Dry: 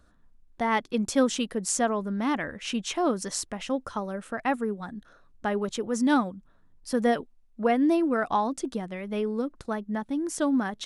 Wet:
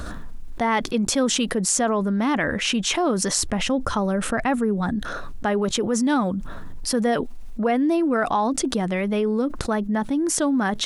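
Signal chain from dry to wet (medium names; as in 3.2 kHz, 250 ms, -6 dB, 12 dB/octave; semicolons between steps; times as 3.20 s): 3.37–4.96 s: bass shelf 190 Hz +8 dB; level flattener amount 70%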